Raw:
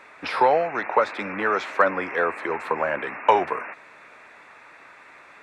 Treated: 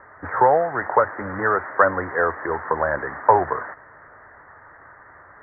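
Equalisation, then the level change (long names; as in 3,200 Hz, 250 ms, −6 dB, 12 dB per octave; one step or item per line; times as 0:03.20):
Butterworth low-pass 1,900 Hz 96 dB per octave
low shelf with overshoot 140 Hz +11.5 dB, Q 1.5
+3.0 dB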